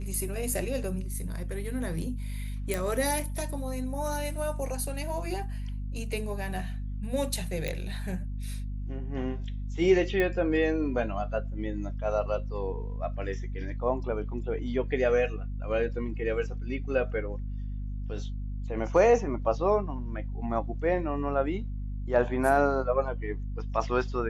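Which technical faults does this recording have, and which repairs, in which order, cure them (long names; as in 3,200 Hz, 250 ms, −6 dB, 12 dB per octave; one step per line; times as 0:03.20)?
mains hum 50 Hz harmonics 5 −34 dBFS
0:02.74: click
0:07.68: click −18 dBFS
0:10.20: click −16 dBFS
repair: click removal
hum removal 50 Hz, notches 5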